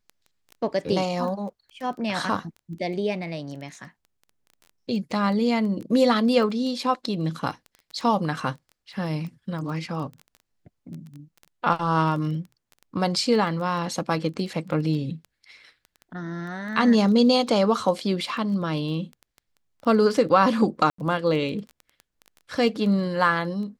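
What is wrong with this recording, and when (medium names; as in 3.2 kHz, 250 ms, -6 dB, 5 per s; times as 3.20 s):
crackle 11 per s -32 dBFS
20.90–20.98 s: dropout 84 ms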